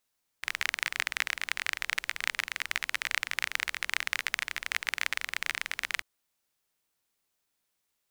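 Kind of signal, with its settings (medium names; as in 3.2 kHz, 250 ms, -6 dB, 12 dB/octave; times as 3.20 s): rain from filtered ticks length 5.59 s, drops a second 27, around 2 kHz, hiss -24 dB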